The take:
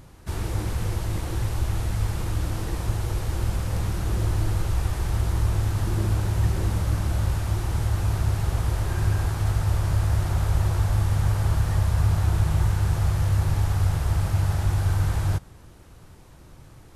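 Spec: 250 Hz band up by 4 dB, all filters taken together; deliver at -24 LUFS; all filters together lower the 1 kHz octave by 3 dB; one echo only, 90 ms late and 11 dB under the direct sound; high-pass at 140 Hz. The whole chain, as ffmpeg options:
-af "highpass=140,equalizer=f=250:t=o:g=8.5,equalizer=f=1000:t=o:g=-4.5,aecho=1:1:90:0.282,volume=1.88"

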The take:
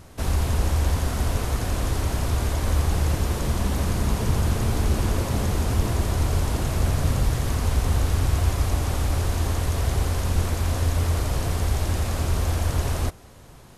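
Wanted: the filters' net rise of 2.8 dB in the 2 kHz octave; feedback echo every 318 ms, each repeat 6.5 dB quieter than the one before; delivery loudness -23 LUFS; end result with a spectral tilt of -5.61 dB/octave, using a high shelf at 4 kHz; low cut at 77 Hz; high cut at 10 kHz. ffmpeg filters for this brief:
-af "highpass=77,lowpass=10000,equalizer=f=2000:t=o:g=4.5,highshelf=f=4000:g=-4,aecho=1:1:318|636|954|1272|1590|1908:0.473|0.222|0.105|0.0491|0.0231|0.0109,volume=1.33"

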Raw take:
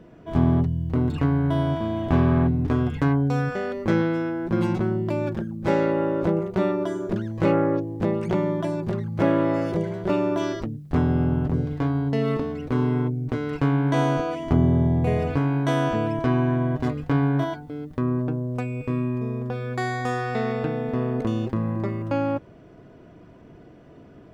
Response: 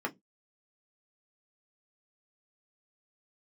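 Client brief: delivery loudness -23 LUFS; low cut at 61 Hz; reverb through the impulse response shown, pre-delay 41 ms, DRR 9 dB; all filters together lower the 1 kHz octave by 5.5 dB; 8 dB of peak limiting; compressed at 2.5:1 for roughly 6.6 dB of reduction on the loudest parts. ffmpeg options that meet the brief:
-filter_complex "[0:a]highpass=61,equalizer=f=1000:t=o:g=-7.5,acompressor=threshold=0.0562:ratio=2.5,alimiter=limit=0.0891:level=0:latency=1,asplit=2[s0][s1];[1:a]atrim=start_sample=2205,adelay=41[s2];[s1][s2]afir=irnorm=-1:irlink=0,volume=0.188[s3];[s0][s3]amix=inputs=2:normalize=0,volume=2.11"

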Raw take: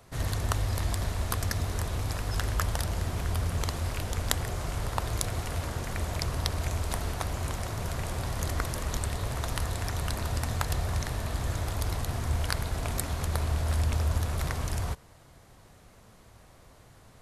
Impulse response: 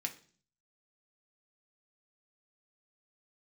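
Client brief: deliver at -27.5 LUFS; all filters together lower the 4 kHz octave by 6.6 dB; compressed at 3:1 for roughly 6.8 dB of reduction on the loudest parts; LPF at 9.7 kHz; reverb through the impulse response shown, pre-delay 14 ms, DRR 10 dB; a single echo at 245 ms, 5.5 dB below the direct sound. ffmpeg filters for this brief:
-filter_complex "[0:a]lowpass=9700,equalizer=f=4000:t=o:g=-8.5,acompressor=threshold=0.0224:ratio=3,aecho=1:1:245:0.531,asplit=2[s0][s1];[1:a]atrim=start_sample=2205,adelay=14[s2];[s1][s2]afir=irnorm=-1:irlink=0,volume=0.299[s3];[s0][s3]amix=inputs=2:normalize=0,volume=2.66"

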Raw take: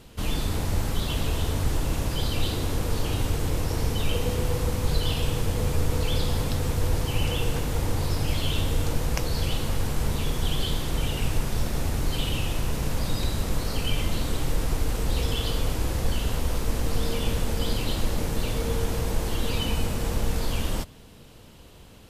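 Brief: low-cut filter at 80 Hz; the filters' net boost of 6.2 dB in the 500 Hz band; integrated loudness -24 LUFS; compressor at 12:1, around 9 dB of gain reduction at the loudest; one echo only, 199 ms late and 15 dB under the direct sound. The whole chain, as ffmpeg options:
-af "highpass=80,equalizer=f=500:t=o:g=7,acompressor=threshold=0.0316:ratio=12,aecho=1:1:199:0.178,volume=3.35"

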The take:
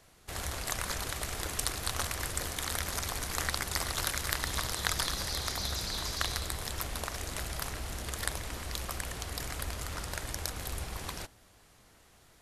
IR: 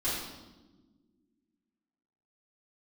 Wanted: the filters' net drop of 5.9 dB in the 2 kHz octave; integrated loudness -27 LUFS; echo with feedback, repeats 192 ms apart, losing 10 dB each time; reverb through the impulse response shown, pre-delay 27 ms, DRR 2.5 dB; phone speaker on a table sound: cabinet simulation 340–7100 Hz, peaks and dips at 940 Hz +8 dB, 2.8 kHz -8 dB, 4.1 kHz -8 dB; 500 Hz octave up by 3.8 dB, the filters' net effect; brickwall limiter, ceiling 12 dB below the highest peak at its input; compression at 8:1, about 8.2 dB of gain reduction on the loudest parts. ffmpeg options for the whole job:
-filter_complex "[0:a]equalizer=f=500:t=o:g=5,equalizer=f=2000:t=o:g=-7,acompressor=threshold=0.0141:ratio=8,alimiter=level_in=1.58:limit=0.0631:level=0:latency=1,volume=0.631,aecho=1:1:192|384|576|768:0.316|0.101|0.0324|0.0104,asplit=2[s0][s1];[1:a]atrim=start_sample=2205,adelay=27[s2];[s1][s2]afir=irnorm=-1:irlink=0,volume=0.335[s3];[s0][s3]amix=inputs=2:normalize=0,highpass=f=340:w=0.5412,highpass=f=340:w=1.3066,equalizer=f=940:t=q:w=4:g=8,equalizer=f=2800:t=q:w=4:g=-8,equalizer=f=4100:t=q:w=4:g=-8,lowpass=f=7100:w=0.5412,lowpass=f=7100:w=1.3066,volume=6.31"

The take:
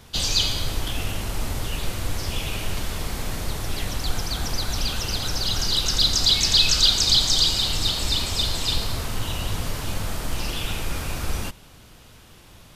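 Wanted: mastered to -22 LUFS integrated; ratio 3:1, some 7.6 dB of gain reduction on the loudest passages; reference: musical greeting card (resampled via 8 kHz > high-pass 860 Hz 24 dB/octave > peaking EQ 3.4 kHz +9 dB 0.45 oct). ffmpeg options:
-af "acompressor=threshold=0.0631:ratio=3,aresample=8000,aresample=44100,highpass=f=860:w=0.5412,highpass=f=860:w=1.3066,equalizer=f=3400:t=o:w=0.45:g=9,volume=1.88"

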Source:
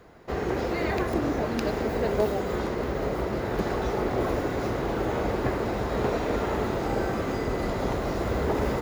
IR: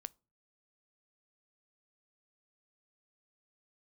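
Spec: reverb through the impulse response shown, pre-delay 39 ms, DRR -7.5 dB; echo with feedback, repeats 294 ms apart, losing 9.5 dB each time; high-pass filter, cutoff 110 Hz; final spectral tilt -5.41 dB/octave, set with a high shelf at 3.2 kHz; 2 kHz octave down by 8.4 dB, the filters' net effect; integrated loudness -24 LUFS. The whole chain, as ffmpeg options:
-filter_complex "[0:a]highpass=110,equalizer=f=2000:t=o:g=-8.5,highshelf=f=3200:g=-8.5,aecho=1:1:294|588|882|1176:0.335|0.111|0.0365|0.012,asplit=2[s0][s1];[1:a]atrim=start_sample=2205,adelay=39[s2];[s1][s2]afir=irnorm=-1:irlink=0,volume=3.98[s3];[s0][s3]amix=inputs=2:normalize=0,volume=0.708"

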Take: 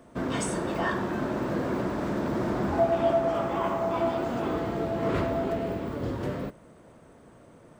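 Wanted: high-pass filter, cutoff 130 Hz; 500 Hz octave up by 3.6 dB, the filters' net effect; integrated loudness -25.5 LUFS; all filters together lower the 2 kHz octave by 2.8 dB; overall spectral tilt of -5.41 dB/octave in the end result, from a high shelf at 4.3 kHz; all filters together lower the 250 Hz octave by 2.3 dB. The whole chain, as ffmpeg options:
-af "highpass=130,equalizer=f=250:t=o:g=-5.5,equalizer=f=500:t=o:g=7,equalizer=f=2000:t=o:g=-5,highshelf=f=4300:g=5,volume=1.19"

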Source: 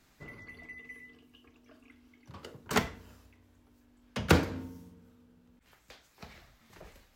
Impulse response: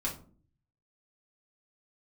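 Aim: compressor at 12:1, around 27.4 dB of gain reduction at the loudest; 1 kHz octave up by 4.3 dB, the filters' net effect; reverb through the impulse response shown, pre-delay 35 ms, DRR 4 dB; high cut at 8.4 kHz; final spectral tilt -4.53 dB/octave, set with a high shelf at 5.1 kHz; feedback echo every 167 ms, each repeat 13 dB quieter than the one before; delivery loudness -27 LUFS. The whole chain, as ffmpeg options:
-filter_complex "[0:a]lowpass=8400,equalizer=f=1000:t=o:g=5.5,highshelf=f=5100:g=3.5,acompressor=threshold=0.00562:ratio=12,aecho=1:1:167|334|501:0.224|0.0493|0.0108,asplit=2[s0][s1];[1:a]atrim=start_sample=2205,adelay=35[s2];[s1][s2]afir=irnorm=-1:irlink=0,volume=0.422[s3];[s0][s3]amix=inputs=2:normalize=0,volume=15.8"

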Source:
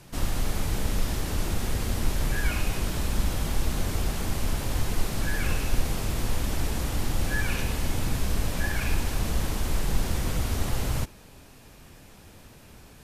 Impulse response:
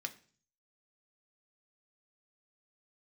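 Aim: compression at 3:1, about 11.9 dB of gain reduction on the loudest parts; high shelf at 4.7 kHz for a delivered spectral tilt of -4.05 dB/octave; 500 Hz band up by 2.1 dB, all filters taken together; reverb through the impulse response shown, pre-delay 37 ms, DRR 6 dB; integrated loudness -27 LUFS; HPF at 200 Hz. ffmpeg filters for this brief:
-filter_complex "[0:a]highpass=200,equalizer=f=500:t=o:g=3,highshelf=f=4700:g=-8.5,acompressor=threshold=0.00501:ratio=3,asplit=2[s0][s1];[1:a]atrim=start_sample=2205,adelay=37[s2];[s1][s2]afir=irnorm=-1:irlink=0,volume=0.531[s3];[s0][s3]amix=inputs=2:normalize=0,volume=7.94"

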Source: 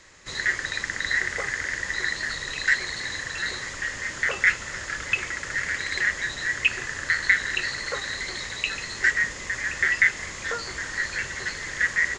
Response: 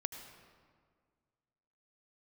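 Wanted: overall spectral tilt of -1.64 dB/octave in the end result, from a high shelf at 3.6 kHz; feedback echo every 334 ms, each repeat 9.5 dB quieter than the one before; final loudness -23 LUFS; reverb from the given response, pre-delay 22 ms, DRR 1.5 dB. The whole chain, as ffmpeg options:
-filter_complex "[0:a]highshelf=f=3600:g=-5.5,aecho=1:1:334|668|1002|1336:0.335|0.111|0.0365|0.012,asplit=2[s0][s1];[1:a]atrim=start_sample=2205,adelay=22[s2];[s1][s2]afir=irnorm=-1:irlink=0,volume=0.891[s3];[s0][s3]amix=inputs=2:normalize=0,volume=1.12"

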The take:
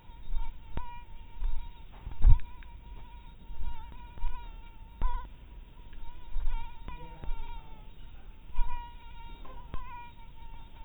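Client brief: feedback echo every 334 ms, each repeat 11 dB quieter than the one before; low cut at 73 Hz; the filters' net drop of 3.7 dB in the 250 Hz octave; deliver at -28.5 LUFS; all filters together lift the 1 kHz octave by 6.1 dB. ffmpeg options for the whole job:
-af "highpass=73,equalizer=f=250:t=o:g=-6,equalizer=f=1000:t=o:g=6.5,aecho=1:1:334|668|1002:0.282|0.0789|0.0221,volume=5.62"

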